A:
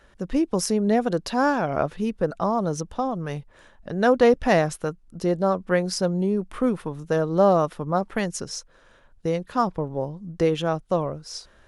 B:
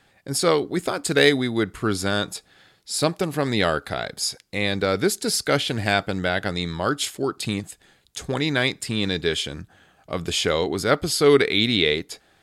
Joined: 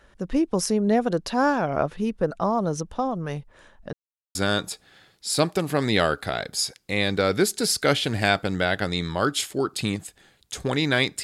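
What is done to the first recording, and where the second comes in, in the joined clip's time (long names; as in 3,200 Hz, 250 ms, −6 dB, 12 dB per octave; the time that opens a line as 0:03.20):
A
0:03.93–0:04.35: silence
0:04.35: continue with B from 0:01.99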